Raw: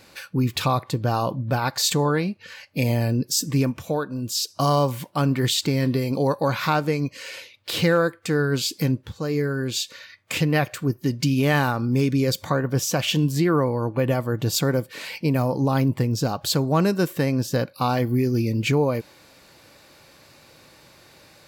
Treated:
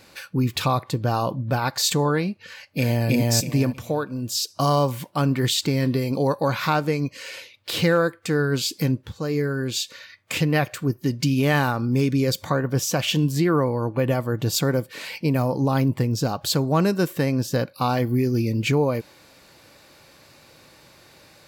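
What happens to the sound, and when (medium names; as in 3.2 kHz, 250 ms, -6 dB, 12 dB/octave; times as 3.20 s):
2.46–3.08 s: echo throw 320 ms, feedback 25%, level 0 dB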